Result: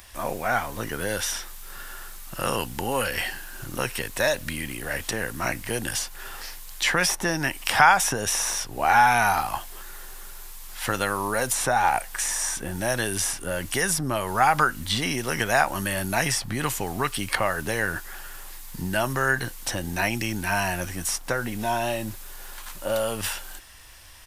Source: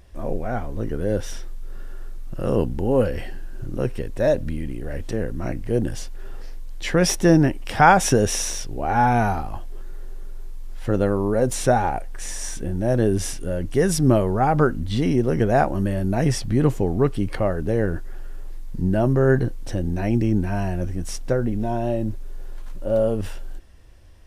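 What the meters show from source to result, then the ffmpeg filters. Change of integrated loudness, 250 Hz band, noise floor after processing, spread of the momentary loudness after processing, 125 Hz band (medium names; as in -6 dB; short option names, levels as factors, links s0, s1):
-3.0 dB, -10.0 dB, -40 dBFS, 18 LU, -10.5 dB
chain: -filter_complex "[0:a]crystalizer=i=5.5:c=0,acrossover=split=86|1500[s0][s1][s2];[s0]acompressor=threshold=0.0158:ratio=4[s3];[s1]acompressor=threshold=0.0708:ratio=4[s4];[s2]acompressor=threshold=0.0355:ratio=4[s5];[s3][s4][s5]amix=inputs=3:normalize=0,firequalizer=gain_entry='entry(430,0);entry(900,13);entry(5800,6)':delay=0.05:min_phase=1,volume=0.596"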